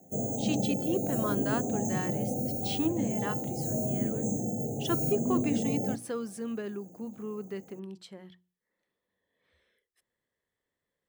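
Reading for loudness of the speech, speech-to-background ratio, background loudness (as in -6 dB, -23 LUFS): -36.0 LUFS, -5.0 dB, -31.0 LUFS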